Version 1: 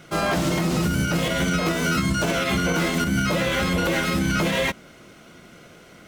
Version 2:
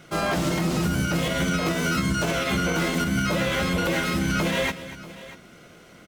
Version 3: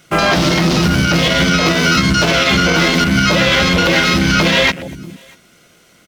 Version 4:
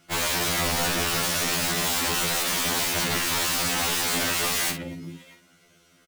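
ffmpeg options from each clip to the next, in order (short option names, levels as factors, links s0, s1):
-af "aecho=1:1:240|639:0.178|0.133,volume=0.794"
-filter_complex "[0:a]highshelf=f=2600:g=11,afwtdn=0.0316,asplit=2[s0][s1];[s1]alimiter=limit=0.0891:level=0:latency=1:release=220,volume=1.26[s2];[s0][s2]amix=inputs=2:normalize=0,volume=2"
-filter_complex "[0:a]aeval=exprs='(mod(3.35*val(0)+1,2)-1)/3.35':c=same,asplit=2[s0][s1];[s1]adelay=49,volume=0.355[s2];[s0][s2]amix=inputs=2:normalize=0,afftfilt=real='re*2*eq(mod(b,4),0)':imag='im*2*eq(mod(b,4),0)':win_size=2048:overlap=0.75,volume=0.398"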